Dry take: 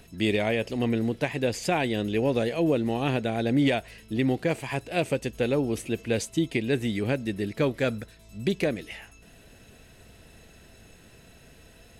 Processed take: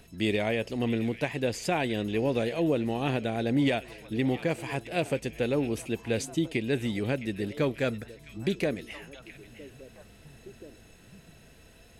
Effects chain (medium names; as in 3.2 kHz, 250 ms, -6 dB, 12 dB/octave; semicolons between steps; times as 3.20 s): repeats whose band climbs or falls 663 ms, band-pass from 2.6 kHz, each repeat -1.4 oct, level -11 dB; trim -2.5 dB